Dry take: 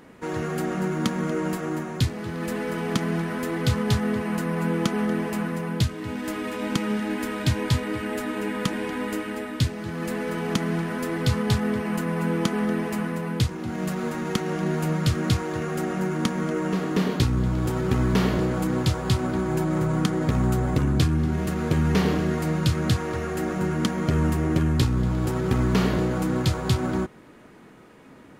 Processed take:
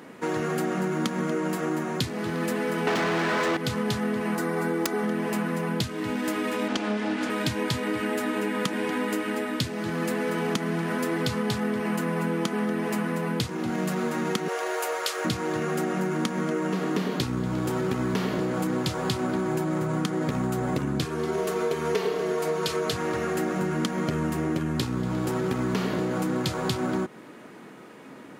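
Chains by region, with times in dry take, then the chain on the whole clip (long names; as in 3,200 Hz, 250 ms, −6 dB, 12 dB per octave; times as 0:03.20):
0:02.87–0:03.57: elliptic low-pass filter 8,100 Hz + mains-hum notches 50/100/150/200/250 Hz + mid-hump overdrive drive 38 dB, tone 1,900 Hz, clips at −11.5 dBFS
0:04.35–0:05.04: parametric band 2,800 Hz −7 dB 0.47 octaves + comb filter 2.6 ms, depth 50% + wrap-around overflow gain 14 dB
0:06.68–0:07.30: lower of the sound and its delayed copy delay 3.4 ms + low-pass filter 6,700 Hz
0:14.48–0:15.25: elliptic high-pass filter 410 Hz + high-shelf EQ 6,400 Hz +5.5 dB
0:21.05–0:22.93: low shelf with overshoot 310 Hz −7.5 dB, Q 3 + comb filter 4.5 ms, depth 71%
whole clip: high-pass filter 170 Hz 12 dB per octave; downward compressor, threshold −28 dBFS; level +4.5 dB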